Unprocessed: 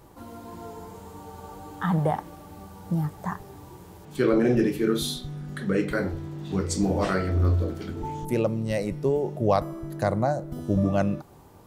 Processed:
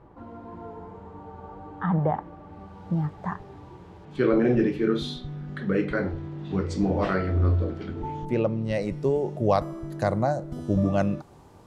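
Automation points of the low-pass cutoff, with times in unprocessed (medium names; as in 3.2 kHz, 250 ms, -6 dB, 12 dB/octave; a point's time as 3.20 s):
2.38 s 1.7 kHz
2.84 s 3.3 kHz
8.60 s 3.3 kHz
9.01 s 8.5 kHz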